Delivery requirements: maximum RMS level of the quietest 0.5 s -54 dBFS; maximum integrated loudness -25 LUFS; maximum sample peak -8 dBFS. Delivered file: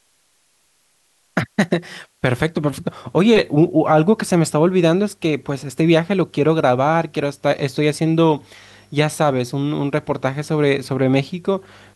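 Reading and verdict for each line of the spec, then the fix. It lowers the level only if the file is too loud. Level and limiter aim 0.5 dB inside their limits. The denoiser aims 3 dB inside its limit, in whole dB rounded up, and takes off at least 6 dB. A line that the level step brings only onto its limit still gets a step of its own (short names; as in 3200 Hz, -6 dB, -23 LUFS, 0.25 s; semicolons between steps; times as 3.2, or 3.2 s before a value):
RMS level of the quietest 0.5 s -61 dBFS: OK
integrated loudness -18.5 LUFS: fail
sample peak -3.5 dBFS: fail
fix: gain -7 dB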